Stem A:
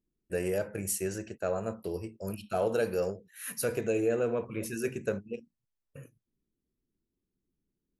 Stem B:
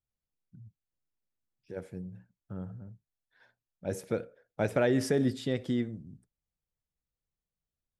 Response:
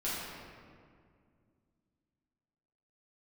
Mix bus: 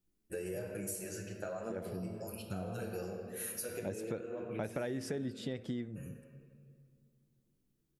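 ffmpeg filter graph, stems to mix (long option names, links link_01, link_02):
-filter_complex "[0:a]highshelf=frequency=6100:gain=7.5,acompressor=threshold=-38dB:ratio=3,asplit=2[link_01][link_02];[link_02]adelay=8.1,afreqshift=1.6[link_03];[link_01][link_03]amix=inputs=2:normalize=1,volume=-1dB,asplit=2[link_04][link_05];[link_05]volume=-5dB[link_06];[1:a]volume=1.5dB,asplit=2[link_07][link_08];[link_08]apad=whole_len=353106[link_09];[link_04][link_09]sidechaincompress=threshold=-39dB:ratio=8:attack=16:release=157[link_10];[2:a]atrim=start_sample=2205[link_11];[link_06][link_11]afir=irnorm=-1:irlink=0[link_12];[link_10][link_07][link_12]amix=inputs=3:normalize=0,acompressor=threshold=-36dB:ratio=5"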